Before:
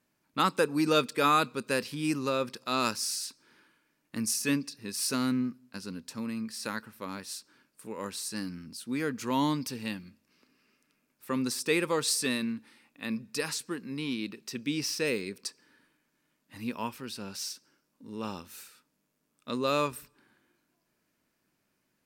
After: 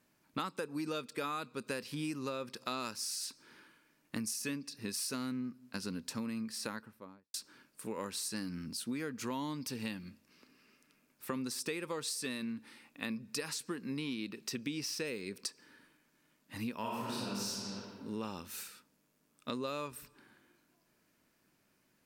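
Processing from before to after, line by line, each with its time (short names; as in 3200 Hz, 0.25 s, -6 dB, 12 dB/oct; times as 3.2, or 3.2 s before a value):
6.35–7.34 studio fade out
16.79–17.5 reverb throw, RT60 1.7 s, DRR -7 dB
whole clip: compressor 12:1, threshold -38 dBFS; gain +3 dB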